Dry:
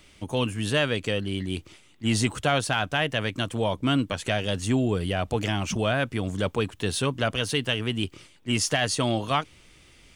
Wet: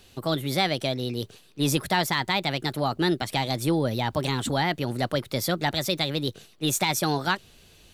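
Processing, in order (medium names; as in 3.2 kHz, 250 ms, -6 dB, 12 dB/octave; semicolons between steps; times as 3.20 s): tape speed +28%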